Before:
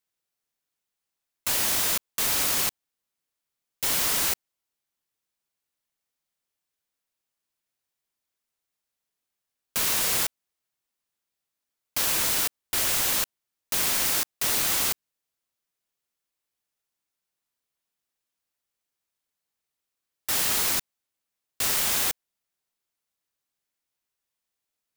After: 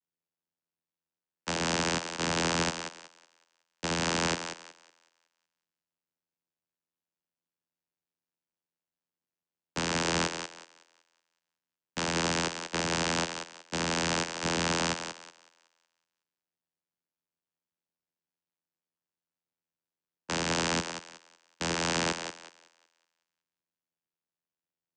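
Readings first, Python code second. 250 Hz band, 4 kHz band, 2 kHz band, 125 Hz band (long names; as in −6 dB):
+8.0 dB, −3.5 dB, 0.0 dB, +8.5 dB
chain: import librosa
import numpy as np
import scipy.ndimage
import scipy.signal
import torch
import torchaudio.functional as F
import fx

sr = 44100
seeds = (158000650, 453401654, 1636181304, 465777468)

y = fx.echo_thinned(x, sr, ms=186, feedback_pct=43, hz=410.0, wet_db=-4.0)
y = fx.vocoder(y, sr, bands=8, carrier='saw', carrier_hz=83.8)
y = fx.upward_expand(y, sr, threshold_db=-48.0, expansion=1.5)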